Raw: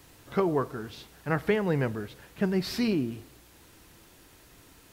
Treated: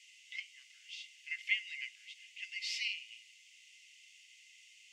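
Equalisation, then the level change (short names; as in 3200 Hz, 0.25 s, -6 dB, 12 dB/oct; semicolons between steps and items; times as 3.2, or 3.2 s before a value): rippled Chebyshev high-pass 2000 Hz, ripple 9 dB; air absorption 140 m; notch 4000 Hz, Q 16; +10.5 dB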